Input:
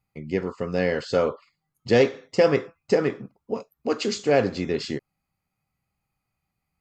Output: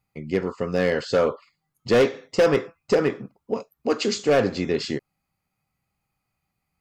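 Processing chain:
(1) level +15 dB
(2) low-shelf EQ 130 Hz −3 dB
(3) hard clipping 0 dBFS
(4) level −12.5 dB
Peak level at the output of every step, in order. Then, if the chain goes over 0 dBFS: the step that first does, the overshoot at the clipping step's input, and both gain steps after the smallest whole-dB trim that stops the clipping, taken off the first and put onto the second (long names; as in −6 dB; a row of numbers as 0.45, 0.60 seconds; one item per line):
+9.0, +9.0, 0.0, −12.5 dBFS
step 1, 9.0 dB
step 1 +6 dB, step 4 −3.5 dB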